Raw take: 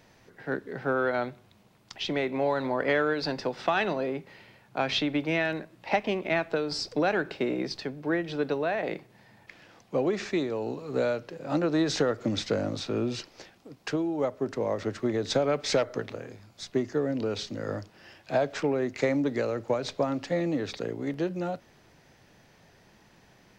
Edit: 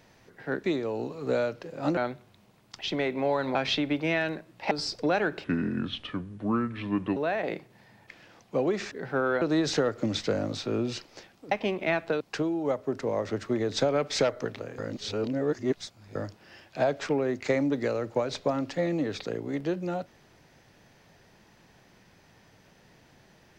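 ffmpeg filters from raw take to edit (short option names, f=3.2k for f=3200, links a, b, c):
-filter_complex "[0:a]asplit=13[a][b][c][d][e][f][g][h][i][j][k][l][m];[a]atrim=end=0.642[n];[b]atrim=start=10.308:end=11.642[o];[c]atrim=start=1.138:end=2.722[p];[d]atrim=start=4.788:end=5.952[q];[e]atrim=start=6.638:end=7.374[r];[f]atrim=start=7.37:end=8.56,asetpts=PTS-STARTPTS,asetrate=30429,aresample=44100[s];[g]atrim=start=8.556:end=10.312[t];[h]atrim=start=0.638:end=1.142[u];[i]atrim=start=11.638:end=13.742[v];[j]atrim=start=5.948:end=6.642[w];[k]atrim=start=13.738:end=16.322[x];[l]atrim=start=16.318:end=17.692,asetpts=PTS-STARTPTS,areverse[y];[m]atrim=start=17.688[z];[n][o]acrossfade=d=0.004:c1=hsin:c2=hsin[aa];[aa][p]acrossfade=d=0.004:c1=hsin:c2=hsin[ab];[ab][q]acrossfade=d=0.004:c1=hsin:c2=hsin[ac];[ac][r]acrossfade=d=0.004:c1=hsin:c2=hsin[ad];[ad][s]acrossfade=d=0.004:c1=hsin:c2=hsin[ae];[ae][t]acrossfade=d=0.004:c1=hsin:c2=hsin[af];[af][u]acrossfade=d=0.004:c1=hsin:c2=hsin[ag];[ag][v]acrossfade=d=0.004:c1=hsin:c2=hsin[ah];[ah][w]acrossfade=d=0.004:c1=hsin:c2=hsin[ai];[ai][x]acrossfade=d=0.004:c1=hsin:c2=hsin[aj];[aj][y]acrossfade=d=0.004:c1=hsin:c2=hsin[ak];[ak][z]acrossfade=d=0.004:c1=hsin:c2=hsin"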